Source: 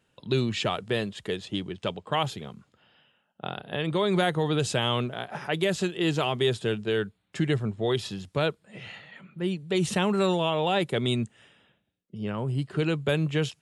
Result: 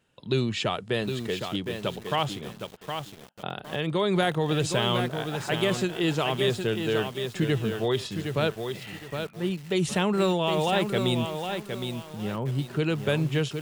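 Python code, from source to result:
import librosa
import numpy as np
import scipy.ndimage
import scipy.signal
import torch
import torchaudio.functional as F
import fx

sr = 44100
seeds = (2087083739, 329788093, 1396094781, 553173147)

y = fx.echo_crushed(x, sr, ms=764, feedback_pct=35, bits=7, wet_db=-6.0)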